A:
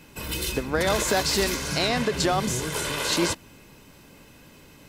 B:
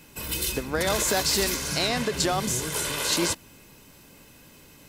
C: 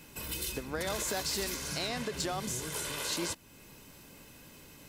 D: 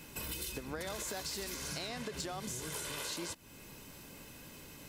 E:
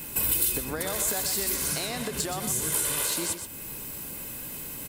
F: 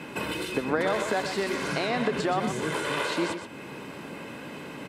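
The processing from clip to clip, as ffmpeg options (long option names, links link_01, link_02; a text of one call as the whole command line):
ffmpeg -i in.wav -af "highshelf=frequency=5700:gain=8,volume=-2.5dB" out.wav
ffmpeg -i in.wav -af "acompressor=threshold=-43dB:ratio=1.5,asoftclip=type=hard:threshold=-22.5dB,volume=-2dB" out.wav
ffmpeg -i in.wav -af "acompressor=threshold=-39dB:ratio=6,volume=1.5dB" out.wav
ffmpeg -i in.wav -filter_complex "[0:a]aexciter=amount=1.8:drive=9.3:freq=8000,asplit=2[link_01][link_02];[link_02]aecho=0:1:124:0.376[link_03];[link_01][link_03]amix=inputs=2:normalize=0,volume=8dB" out.wav
ffmpeg -i in.wav -af "highpass=190,lowpass=2300,volume=8dB" out.wav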